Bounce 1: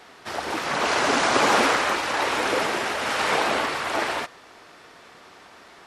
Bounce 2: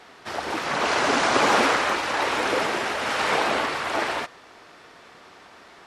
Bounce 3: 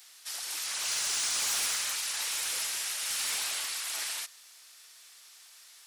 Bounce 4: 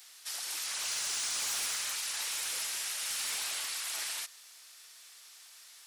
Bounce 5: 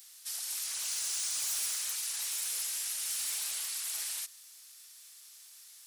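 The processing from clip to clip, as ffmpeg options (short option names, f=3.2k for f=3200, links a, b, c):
-af "highshelf=f=9.1k:g=-6"
-af "aderivative,crystalizer=i=5:c=0,asoftclip=type=tanh:threshold=-20dB,volume=-5.5dB"
-af "acompressor=threshold=-35dB:ratio=2"
-af "crystalizer=i=2.5:c=0,volume=-9dB"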